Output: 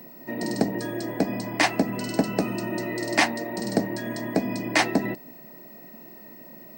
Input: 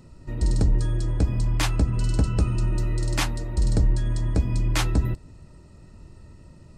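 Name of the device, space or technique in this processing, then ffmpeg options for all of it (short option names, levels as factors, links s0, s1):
old television with a line whistle: -af "highpass=f=210:w=0.5412,highpass=f=210:w=1.3066,equalizer=f=220:t=q:w=4:g=4,equalizer=f=700:t=q:w=4:g=10,equalizer=f=1300:t=q:w=4:g=-7,equalizer=f=1900:t=q:w=4:g=8,equalizer=f=3400:t=q:w=4:g=-6,equalizer=f=7000:t=q:w=4:g=-7,lowpass=f=8300:w=0.5412,lowpass=f=8300:w=1.3066,aeval=exprs='val(0)+0.00316*sin(2*PI*15734*n/s)':c=same,volume=1.88"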